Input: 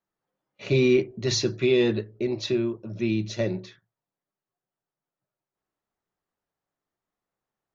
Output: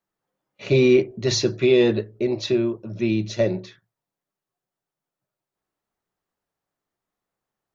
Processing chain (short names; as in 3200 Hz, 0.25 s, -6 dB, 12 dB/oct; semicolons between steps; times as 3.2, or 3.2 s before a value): dynamic EQ 590 Hz, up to +5 dB, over -37 dBFS, Q 1.4; gain +2.5 dB